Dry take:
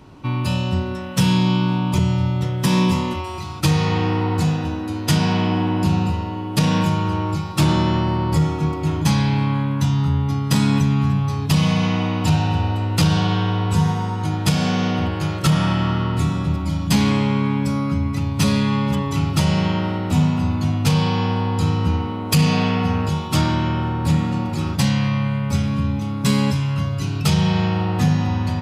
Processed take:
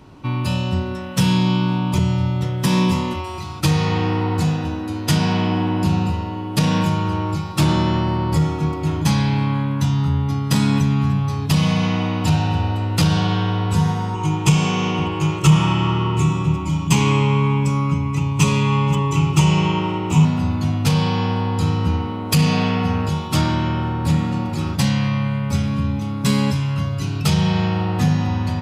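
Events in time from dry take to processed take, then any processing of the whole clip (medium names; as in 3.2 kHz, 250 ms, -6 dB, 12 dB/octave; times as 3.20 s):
14.14–20.25 s: rippled EQ curve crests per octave 0.71, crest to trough 12 dB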